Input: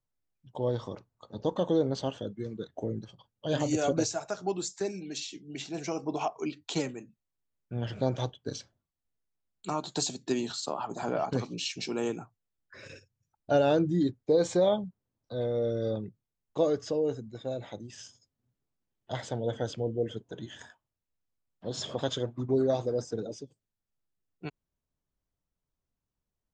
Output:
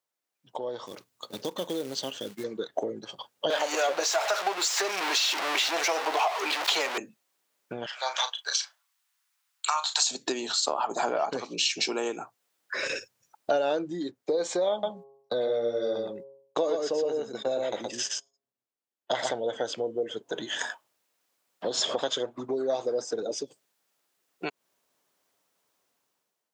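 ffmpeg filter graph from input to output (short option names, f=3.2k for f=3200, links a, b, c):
-filter_complex "[0:a]asettb=1/sr,asplit=3[a][b][c];[a]atrim=end=0.864[d];[b]atrim=start=0.86:end=2.44,asetpts=PTS-STARTPTS,afade=t=in:d=0.004:c=qsin,afade=t=out:st=1.576:d=0.004:c=qsin,equalizer=f=780:w=0.56:g=-14,acrusher=bits=5:mode=log:mix=0:aa=0.000001[e];[c]atrim=start=2.436[f];[d][e]acrossfade=d=0.004:c1=hsin:c2=qsin[g];[g][f]acrossfade=d=0.004:c1=qsin:c2=hsin,asettb=1/sr,asplit=3[h][i][j];[h]atrim=end=3.504[k];[i]atrim=start=3.5:end=6.98,asetpts=PTS-STARTPTS,afade=t=in:d=0.004:c=qsin,afade=t=out:st=3.476:d=0.004:c=qsin,aeval=exprs='val(0)+0.5*0.0282*sgn(val(0))':c=same,acrossover=split=510 5300:gain=0.0794 1 0.224[l][m][n];[l][m][n]amix=inputs=3:normalize=0[o];[j]atrim=start=6.976[p];[k][o]acrossfade=d=0.004:c1=hsin:c2=qsin[q];[q][p]acrossfade=d=0.004:c1=qsin:c2=hsin,asettb=1/sr,asplit=3[r][s][t];[r]atrim=end=7.864[u];[s]atrim=start=7.86:end=10.11,asetpts=PTS-STARTPTS,afade=t=in:d=0.004:c=qsin,afade=t=out:st=2.246:d=0.004:c=qsin,highpass=f=1k:w=0.5412,highpass=f=1k:w=1.3066,asplit=2[v][w];[w]adelay=36,volume=-10.5dB[x];[v][x]amix=inputs=2:normalize=0,atrim=end_sample=99225[y];[t]atrim=start=10.106[z];[u][y]acrossfade=d=0.004:c1=hsin:c2=qsin[aa];[aa][z]acrossfade=d=0.004:c1=qsin:c2=hsin,asettb=1/sr,asplit=3[ab][ac][ad];[ab]atrim=end=14.714[ae];[ac]atrim=start=14.71:end=19.31,asetpts=PTS-STARTPTS,afade=t=in:d=0.004:c=qsin,afade=t=out:st=4.596:d=0.004:c=qsin,agate=range=-24dB:threshold=-49dB:ratio=16:release=100:detection=peak,bandreject=f=136.7:t=h:w=4,bandreject=f=273.4:t=h:w=4,bandreject=f=410.1:t=h:w=4,bandreject=f=546.8:t=h:w=4,bandreject=f=683.5:t=h:w=4,bandreject=f=820.2:t=h:w=4,bandreject=f=956.9:t=h:w=4,bandreject=f=1.0936k:t=h:w=4,aecho=1:1:119:0.668,atrim=end_sample=202860[af];[ad]atrim=start=19.306[ag];[ae][af]acrossfade=d=0.004:c1=hsin:c2=qsin[ah];[ah][ag]acrossfade=d=0.004:c1=qsin:c2=hsin,acompressor=threshold=-43dB:ratio=5,highpass=460,dynaudnorm=f=280:g=5:m=13dB,volume=6dB"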